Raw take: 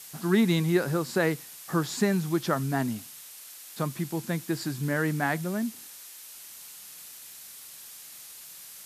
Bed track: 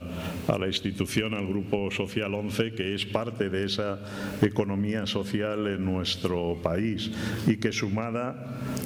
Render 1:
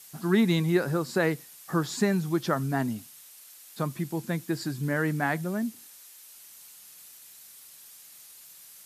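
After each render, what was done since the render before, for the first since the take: noise reduction 6 dB, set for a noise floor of -46 dBFS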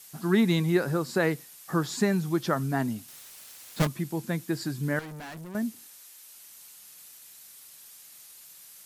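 3.08–3.87 s: square wave that keeps the level; 4.99–5.55 s: valve stage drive 39 dB, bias 0.75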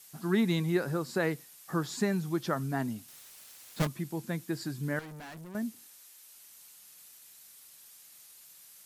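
trim -4.5 dB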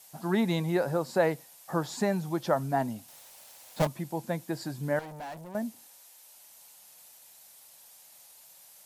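high-order bell 700 Hz +9.5 dB 1.1 oct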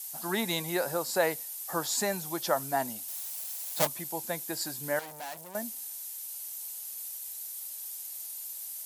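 RIAA curve recording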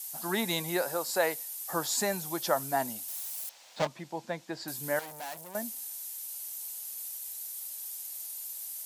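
0.82–1.66 s: high-pass 310 Hz 6 dB/octave; 3.49–4.68 s: distance through air 160 m

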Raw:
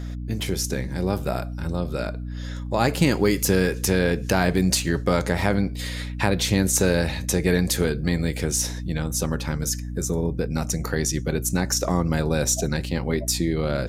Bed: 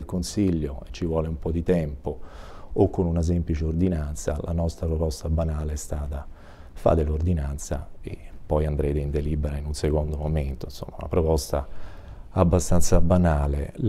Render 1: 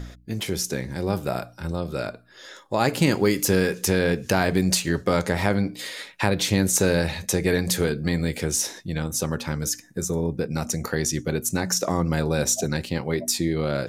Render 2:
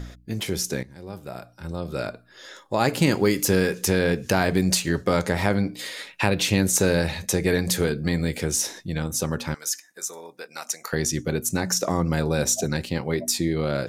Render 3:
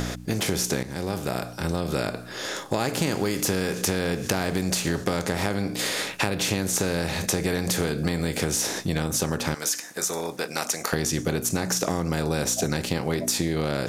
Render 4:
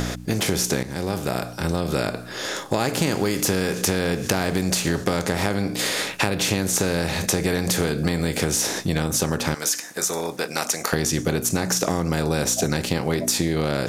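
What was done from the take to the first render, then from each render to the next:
de-hum 60 Hz, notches 5
0.83–2.00 s: fade in quadratic, from -14 dB; 6.07–6.61 s: peaking EQ 2.7 kHz +8.5 dB 0.21 oct; 9.54–10.93 s: high-pass 950 Hz
spectral levelling over time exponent 0.6; compression, threshold -21 dBFS, peak gain reduction 9.5 dB
trim +3 dB

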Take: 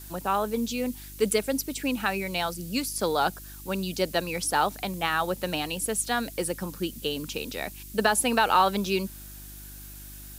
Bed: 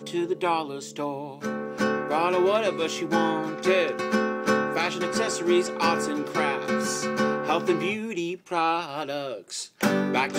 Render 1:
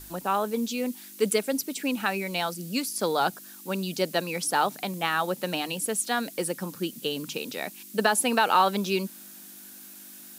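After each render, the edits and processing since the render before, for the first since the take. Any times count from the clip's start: de-hum 50 Hz, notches 3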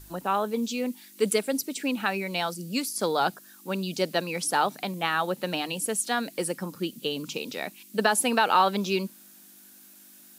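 noise print and reduce 6 dB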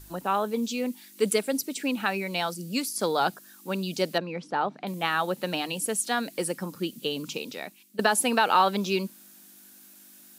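4.18–4.87 s: tape spacing loss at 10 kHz 32 dB; 7.31–7.99 s: fade out, to -14 dB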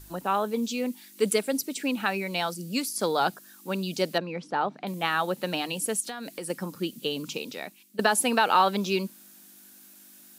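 6.00–6.50 s: compression 12:1, threshold -31 dBFS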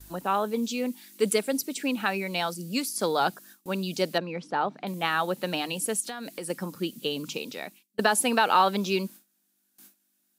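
gate with hold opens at -39 dBFS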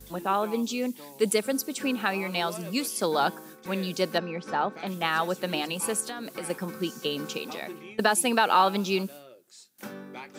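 add bed -17.5 dB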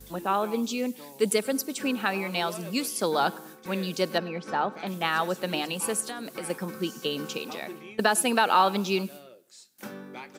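feedback delay 102 ms, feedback 43%, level -23 dB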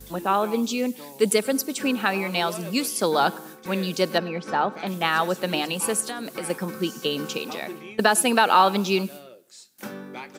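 trim +4 dB

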